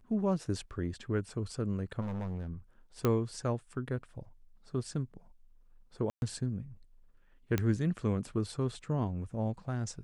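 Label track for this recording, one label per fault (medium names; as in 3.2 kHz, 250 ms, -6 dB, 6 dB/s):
2.000000	2.490000	clipped -33.5 dBFS
3.050000	3.050000	pop -15 dBFS
6.100000	6.220000	dropout 121 ms
7.580000	7.580000	pop -16 dBFS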